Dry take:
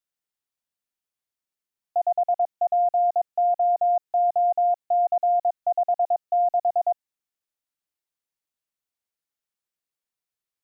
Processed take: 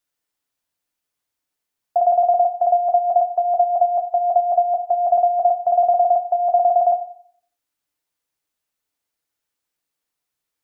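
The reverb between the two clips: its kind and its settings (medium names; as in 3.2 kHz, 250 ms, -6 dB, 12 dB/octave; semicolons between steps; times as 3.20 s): FDN reverb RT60 0.56 s, low-frequency decay 0.75×, high-frequency decay 0.3×, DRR 5 dB; trim +7 dB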